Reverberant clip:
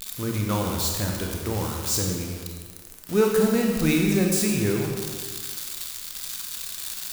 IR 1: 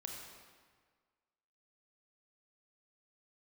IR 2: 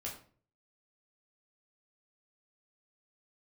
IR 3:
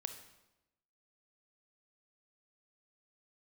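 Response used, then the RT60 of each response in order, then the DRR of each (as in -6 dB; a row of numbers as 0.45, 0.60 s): 1; 1.6, 0.45, 0.95 s; 0.0, -3.5, 7.5 dB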